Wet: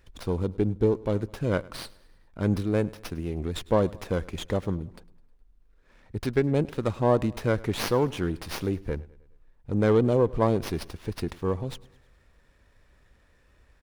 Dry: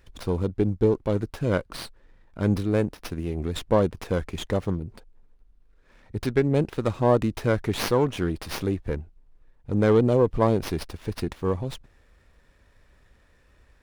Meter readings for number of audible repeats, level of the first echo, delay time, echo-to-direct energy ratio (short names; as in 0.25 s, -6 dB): 3, -22.0 dB, 0.104 s, -20.5 dB